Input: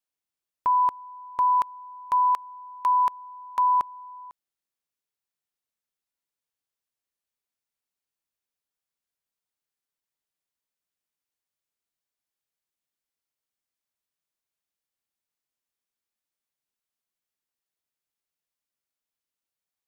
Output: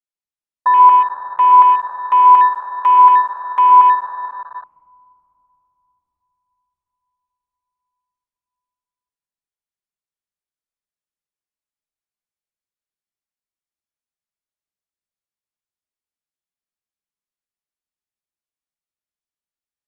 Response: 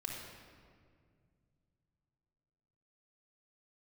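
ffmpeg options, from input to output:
-filter_complex "[1:a]atrim=start_sample=2205,asetrate=22491,aresample=44100[s0];[0:a][s0]afir=irnorm=-1:irlink=0,afwtdn=0.0398,volume=2"

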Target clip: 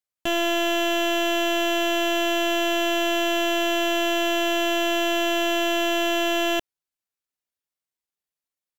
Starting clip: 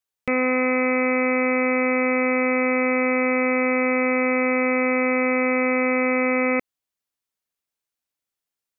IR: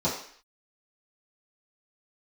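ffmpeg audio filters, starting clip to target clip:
-af "asetrate=58866,aresample=44100,atempo=0.749154,aeval=exprs='0.224*(cos(1*acos(clip(val(0)/0.224,-1,1)))-cos(1*PI/2))+0.0355*(cos(6*acos(clip(val(0)/0.224,-1,1)))-cos(6*PI/2))+0.00355*(cos(7*acos(clip(val(0)/0.224,-1,1)))-cos(7*PI/2))':c=same,volume=0.75"

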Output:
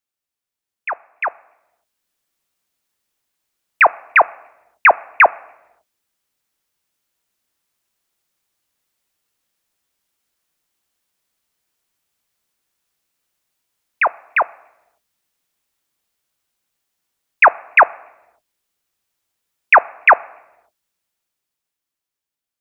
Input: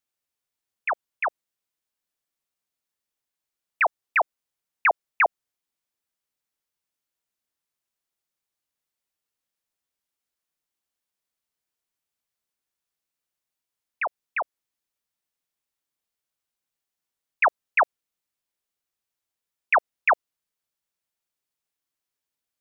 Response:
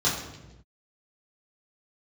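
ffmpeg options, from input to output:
-filter_complex "[0:a]dynaudnorm=f=290:g=11:m=3.98,asplit=2[s0][s1];[1:a]atrim=start_sample=2205[s2];[s1][s2]afir=irnorm=-1:irlink=0,volume=0.0251[s3];[s0][s3]amix=inputs=2:normalize=0"

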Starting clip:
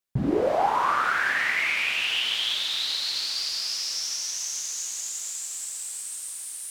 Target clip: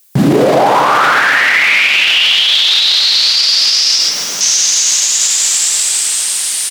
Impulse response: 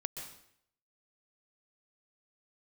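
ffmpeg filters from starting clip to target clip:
-filter_complex "[0:a]crystalizer=i=4.5:c=0,asettb=1/sr,asplit=3[s0][s1][s2];[s0]atrim=end=3.984[s3];[s1]atrim=start=3.98:end=4.41,asetpts=PTS-STARTPTS,afade=t=in:d=0.004:c=qsin,afade=t=out:st=0.426:d=0.004:c=qsin,volume=56.2,asoftclip=hard,volume=0.0178[s4];[s2]atrim=start=4.406[s5];[s3][s4]acrossfade=d=0.004:c1=hsin:c2=qsin[s6];[s6][s5]acrossfade=d=0.004:c1=qsin:c2=hsin[s7];[1:a]atrim=start_sample=2205,afade=t=out:st=0.22:d=0.01,atrim=end_sample=10143,asetrate=48510,aresample=44100[s8];[s7][s8]afir=irnorm=-1:irlink=0,acrossover=split=4900[s9][s10];[s10]acompressor=threshold=0.00398:ratio=4:attack=1:release=60[s11];[s9][s11]amix=inputs=2:normalize=0,highpass=f=140:w=0.5412,highpass=f=140:w=1.3066,asplit=2[s12][s13];[s13]adelay=262,lowpass=f=880:p=1,volume=0.501,asplit=2[s14][s15];[s15]adelay=262,lowpass=f=880:p=1,volume=0.51,asplit=2[s16][s17];[s17]adelay=262,lowpass=f=880:p=1,volume=0.51,asplit=2[s18][s19];[s19]adelay=262,lowpass=f=880:p=1,volume=0.51,asplit=2[s20][s21];[s21]adelay=262,lowpass=f=880:p=1,volume=0.51,asplit=2[s22][s23];[s23]adelay=262,lowpass=f=880:p=1,volume=0.51[s24];[s12][s14][s16][s18][s20][s22][s24]amix=inputs=7:normalize=0,alimiter=level_in=16.8:limit=0.891:release=50:level=0:latency=1,volume=0.891"

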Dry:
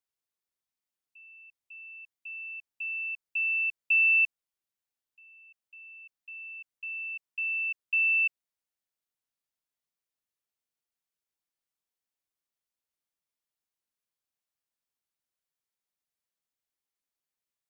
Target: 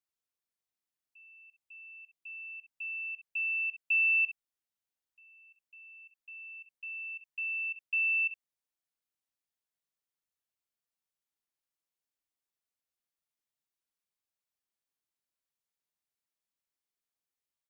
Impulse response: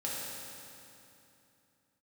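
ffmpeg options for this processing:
-af "aecho=1:1:36|64:0.398|0.282,volume=0.631"

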